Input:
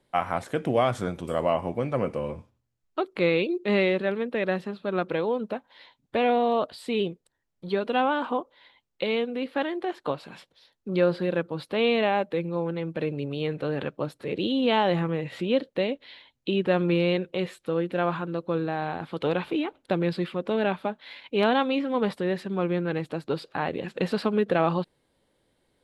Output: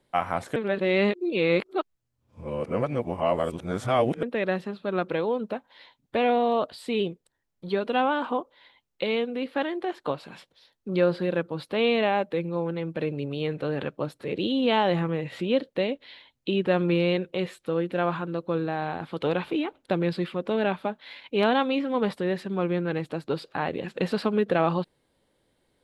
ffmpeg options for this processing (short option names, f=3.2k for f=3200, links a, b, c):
-filter_complex "[0:a]asplit=3[a][b][c];[a]atrim=end=0.562[d];[b]atrim=start=0.558:end=4.232,asetpts=PTS-STARTPTS,areverse[e];[c]atrim=start=4.228[f];[d][e]acrossfade=d=0.004:c1=hsin:c2=hsin[g];[g][f]acrossfade=d=0.004:c1=hsin:c2=hsin"